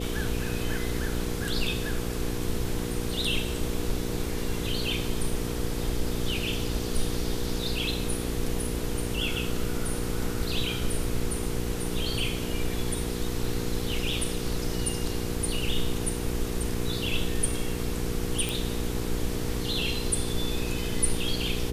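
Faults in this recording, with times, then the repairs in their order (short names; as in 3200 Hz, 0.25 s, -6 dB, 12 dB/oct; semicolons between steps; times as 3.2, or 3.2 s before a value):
hum 60 Hz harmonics 8 -33 dBFS
18.49 pop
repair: de-click; de-hum 60 Hz, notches 8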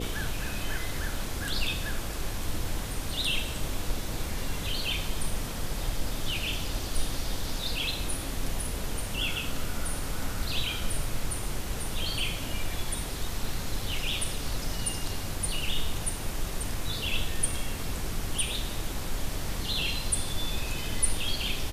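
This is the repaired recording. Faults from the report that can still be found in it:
none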